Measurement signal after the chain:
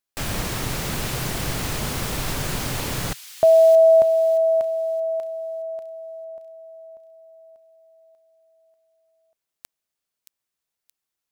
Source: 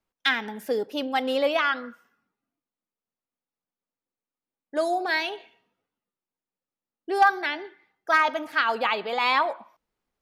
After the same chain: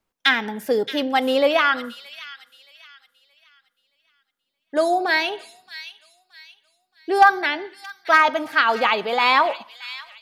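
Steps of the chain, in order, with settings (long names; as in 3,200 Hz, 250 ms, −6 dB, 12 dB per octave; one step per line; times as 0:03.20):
dynamic equaliser 130 Hz, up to +7 dB, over −54 dBFS, Q 2.3
delay with a high-pass on its return 623 ms, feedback 34%, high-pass 2,900 Hz, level −9 dB
level +5.5 dB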